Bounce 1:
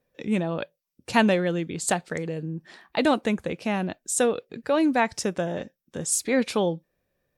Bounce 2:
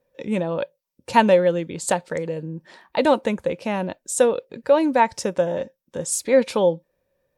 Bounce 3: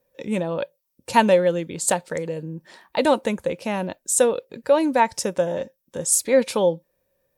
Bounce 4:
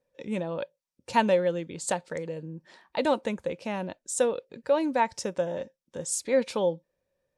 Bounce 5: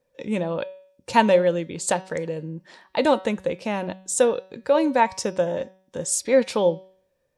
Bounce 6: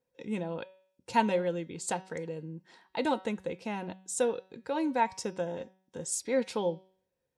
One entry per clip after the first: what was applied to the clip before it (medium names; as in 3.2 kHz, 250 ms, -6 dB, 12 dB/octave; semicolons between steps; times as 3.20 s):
small resonant body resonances 540/920 Hz, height 11 dB, ringing for 40 ms
treble shelf 7.7 kHz +12 dB; trim -1 dB
low-pass 7.3 kHz 12 dB/octave; trim -6.5 dB
de-hum 188.4 Hz, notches 32; trim +6 dB
comb of notches 590 Hz; trim -8 dB